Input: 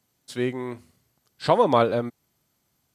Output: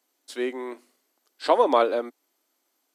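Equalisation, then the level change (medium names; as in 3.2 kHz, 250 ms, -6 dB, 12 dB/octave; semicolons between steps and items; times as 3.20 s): elliptic high-pass 280 Hz, stop band 70 dB; 0.0 dB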